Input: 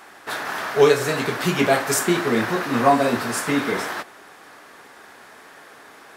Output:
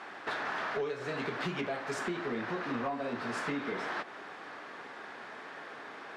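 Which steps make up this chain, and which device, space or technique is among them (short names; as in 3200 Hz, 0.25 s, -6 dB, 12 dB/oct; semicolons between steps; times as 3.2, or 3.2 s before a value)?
AM radio (BPF 120–3700 Hz; compressor 10:1, threshold -31 dBFS, peak gain reduction 21.5 dB; soft clip -25 dBFS, distortion -21 dB)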